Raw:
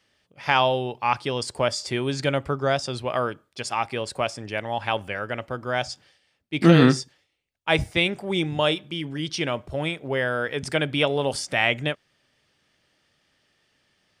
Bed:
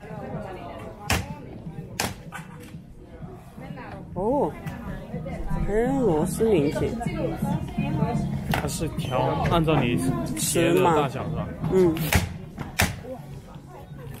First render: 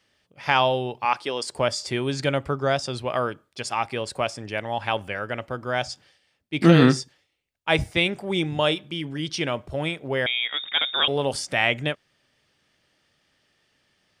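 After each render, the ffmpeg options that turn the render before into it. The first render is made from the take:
-filter_complex "[0:a]asettb=1/sr,asplit=3[s0][s1][s2];[s0]atrim=end=1.054[s3];[s1]atrim=start=1.05:end=1.52,asetpts=PTS-STARTPTS,afade=t=in:d=0.004:c=qsin,afade=t=out:st=0.466:d=0.004:c=qsin,highpass=300[s4];[s2]atrim=start=1.516[s5];[s3][s4]acrossfade=d=0.004:c1=hsin:c2=qsin[s6];[s6][s5]acrossfade=d=0.004:c1=qsin:c2=hsin,asettb=1/sr,asplit=3[s7][s8][s9];[s7]atrim=end=10.264[s10];[s8]atrim=start=10.26:end=11.08,asetpts=PTS-STARTPTS,afade=t=in:d=0.004:c=qsin,afade=t=out:st=0.816:d=0.004:c=qsin,lowpass=f=3200:t=q:w=0.5098,lowpass=f=3200:t=q:w=0.6013,lowpass=f=3200:t=q:w=0.9,lowpass=f=3200:t=q:w=2.563,afreqshift=-3800[s11];[s9]atrim=start=11.076[s12];[s10][s11]acrossfade=d=0.004:c1=hsin:c2=qsin[s13];[s13][s12]acrossfade=d=0.004:c1=qsin:c2=hsin"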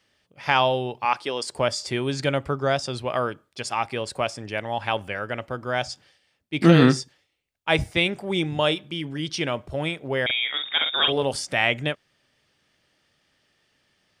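-filter_complex "[0:a]asettb=1/sr,asplit=3[s0][s1][s2];[s0]atrim=end=10.254[s3];[s1]atrim=start=10.25:end=11.23,asetpts=PTS-STARTPTS,afade=t=in:d=0.004:c=qsin,afade=t=out:st=0.976:d=0.004:c=qsin,asplit=2[s4][s5];[s5]adelay=46,volume=0.473[s6];[s4][s6]amix=inputs=2:normalize=0,atrim=end_sample=43218[s7];[s2]atrim=start=11.226[s8];[s3][s7]acrossfade=d=0.004:c1=hsin:c2=qsin[s9];[s9][s8]acrossfade=d=0.004:c1=qsin:c2=hsin"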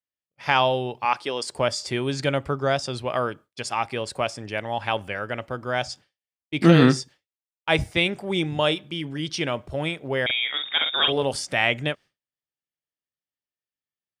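-af "agate=range=0.0224:threshold=0.01:ratio=3:detection=peak"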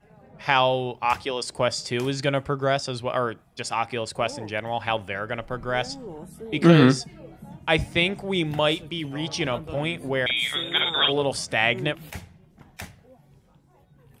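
-filter_complex "[1:a]volume=0.15[s0];[0:a][s0]amix=inputs=2:normalize=0"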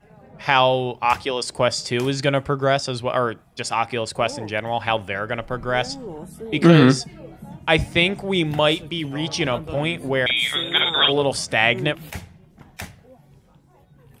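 -af "volume=1.58,alimiter=limit=0.794:level=0:latency=1"

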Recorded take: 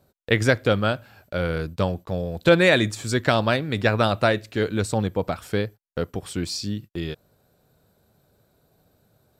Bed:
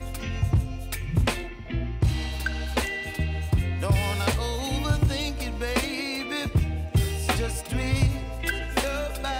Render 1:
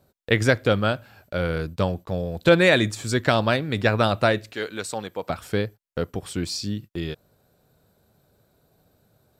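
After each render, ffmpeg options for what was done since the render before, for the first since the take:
-filter_complex "[0:a]asettb=1/sr,asplit=3[s0][s1][s2];[s0]atrim=end=4.534[s3];[s1]atrim=start=4.53:end=5.3,asetpts=PTS-STARTPTS,afade=t=in:d=0.004:c=qsin,afade=t=out:st=0.766:d=0.004:c=qsin,highpass=f=790:p=1[s4];[s2]atrim=start=5.296[s5];[s3][s4]acrossfade=d=0.004:c1=hsin:c2=qsin[s6];[s6][s5]acrossfade=d=0.004:c1=qsin:c2=hsin"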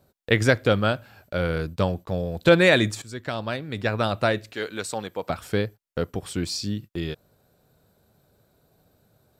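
-filter_complex "[0:a]asplit=2[s0][s1];[s0]atrim=end=3.02,asetpts=PTS-STARTPTS,afade=t=out:st=3.016:d=0.004:c=hsin:silence=0.177828[s2];[s1]atrim=start=3.02,asetpts=PTS-STARTPTS,afade=t=in:d=1.77:silence=0.177828[s3];[s2][s3]concat=n=2:v=0:a=1"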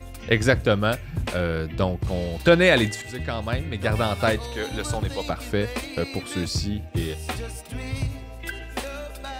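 -filter_complex "[1:a]volume=0.531[s0];[0:a][s0]amix=inputs=2:normalize=0"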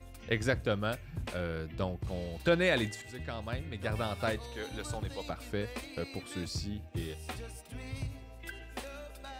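-af "volume=0.282"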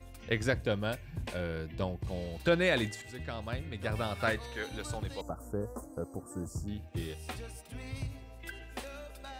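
-filter_complex "[0:a]asettb=1/sr,asplit=3[s0][s1][s2];[s0]atrim=end=0.524[s3];[s1]atrim=start=0.52:end=2.23,asetpts=PTS-STARTPTS,afade=t=in:d=0.004:c=qsin,afade=t=out:st=1.706:d=0.004:c=qsin,asuperstop=centerf=1300:order=4:qfactor=7.5[s4];[s2]atrim=start=2.226[s5];[s3][s4]acrossfade=d=0.004:c1=hsin:c2=qsin[s6];[s6][s5]acrossfade=d=0.004:c1=qsin:c2=hsin,asettb=1/sr,asplit=3[s7][s8][s9];[s7]atrim=end=4.154[s10];[s8]atrim=start=4.15:end=4.65,asetpts=PTS-STARTPTS,afade=t=in:d=0.004:c=qsin,afade=t=out:st=0.496:d=0.004:c=qsin,equalizer=f=1700:t=o:w=0.93:g=6.5[s11];[s9]atrim=start=4.646[s12];[s10][s11]acrossfade=d=0.004:c1=hsin:c2=qsin[s13];[s13][s12]acrossfade=d=0.004:c1=qsin:c2=hsin,asettb=1/sr,asplit=3[s14][s15][s16];[s14]atrim=end=5.214[s17];[s15]atrim=start=5.21:end=6.68,asetpts=PTS-STARTPTS,afade=t=in:d=0.004:c=qsin,afade=t=out:st=1.466:d=0.004:c=qsin,asuperstop=centerf=3000:order=8:qfactor=0.55[s18];[s16]atrim=start=6.676[s19];[s17][s18]acrossfade=d=0.004:c1=hsin:c2=qsin[s20];[s20][s19]acrossfade=d=0.004:c1=qsin:c2=hsin"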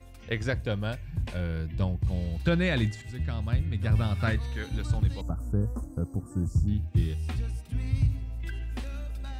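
-filter_complex "[0:a]acrossover=split=7000[s0][s1];[s1]acompressor=threshold=0.00126:ratio=4:attack=1:release=60[s2];[s0][s2]amix=inputs=2:normalize=0,asubboost=boost=6.5:cutoff=200"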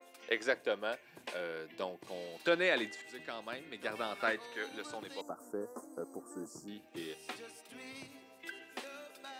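-af "highpass=f=350:w=0.5412,highpass=f=350:w=1.3066,adynamicequalizer=threshold=0.00355:dfrequency=2800:dqfactor=0.7:tfrequency=2800:tqfactor=0.7:attack=5:release=100:ratio=0.375:range=3.5:mode=cutabove:tftype=highshelf"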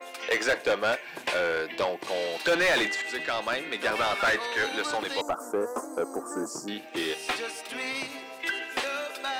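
-filter_complex "[0:a]asplit=2[s0][s1];[s1]highpass=f=720:p=1,volume=20,asoftclip=type=tanh:threshold=0.168[s2];[s0][s2]amix=inputs=2:normalize=0,lowpass=f=4400:p=1,volume=0.501"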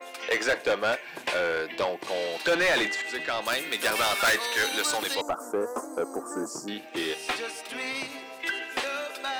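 -filter_complex "[0:a]asettb=1/sr,asplit=3[s0][s1][s2];[s0]atrim=end=3.454[s3];[s1]atrim=start=3.45:end=5.15,asetpts=PTS-STARTPTS,afade=t=in:d=0.004:c=qsin,afade=t=out:st=1.696:d=0.004:c=qsin,aemphasis=mode=production:type=75fm[s4];[s2]atrim=start=5.146[s5];[s3][s4]acrossfade=d=0.004:c1=hsin:c2=qsin[s6];[s6][s5]acrossfade=d=0.004:c1=qsin:c2=hsin"

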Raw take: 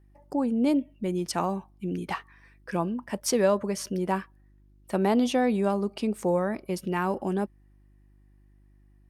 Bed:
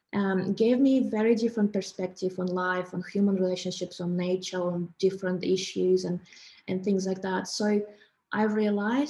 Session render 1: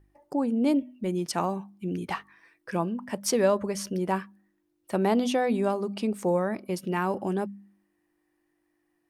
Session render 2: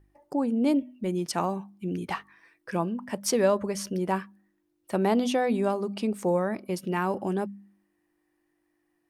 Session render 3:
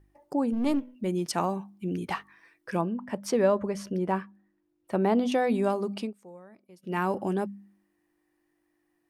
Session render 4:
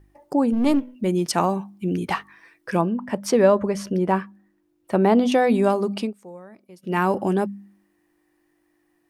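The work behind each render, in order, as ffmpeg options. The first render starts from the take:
-af "bandreject=f=50:t=h:w=4,bandreject=f=100:t=h:w=4,bandreject=f=150:t=h:w=4,bandreject=f=200:t=h:w=4,bandreject=f=250:t=h:w=4"
-af anull
-filter_complex "[0:a]asplit=3[s0][s1][s2];[s0]afade=t=out:st=0.52:d=0.02[s3];[s1]aeval=exprs='if(lt(val(0),0),0.447*val(0),val(0))':c=same,afade=t=in:st=0.52:d=0.02,afade=t=out:st=0.94:d=0.02[s4];[s2]afade=t=in:st=0.94:d=0.02[s5];[s3][s4][s5]amix=inputs=3:normalize=0,asettb=1/sr,asplit=3[s6][s7][s8];[s6]atrim=end=2.814[s9];[s7]atrim=start=2.81:end=5.32,asetpts=PTS-STARTPTS,afade=t=in:d=0.004:c=qsin,afade=t=out:st=2.506:d=0.004:c=qsin,highshelf=f=3500:g=-11.5[s10];[s8]atrim=start=5.316[s11];[s9][s10]acrossfade=d=0.004:c1=hsin:c2=qsin[s12];[s12][s11]acrossfade=d=0.004:c1=qsin:c2=hsin,asplit=3[s13][s14][s15];[s13]atrim=end=6.13,asetpts=PTS-STARTPTS,afade=t=out:st=5.92:d=0.21:c=qsin:silence=0.0749894[s16];[s14]atrim=start=6.13:end=6.82,asetpts=PTS-STARTPTS,volume=0.075[s17];[s15]atrim=start=6.82,asetpts=PTS-STARTPTS,afade=t=in:d=0.21:c=qsin:silence=0.0749894[s18];[s16][s17][s18]concat=n=3:v=0:a=1"
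-af "volume=2.24"

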